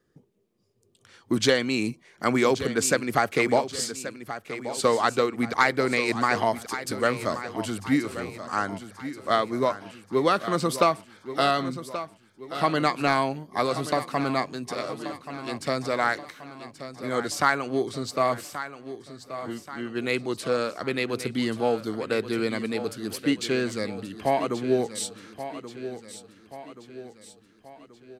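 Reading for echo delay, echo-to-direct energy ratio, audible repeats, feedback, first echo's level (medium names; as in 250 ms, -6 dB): 1130 ms, -11.0 dB, 4, 49%, -12.0 dB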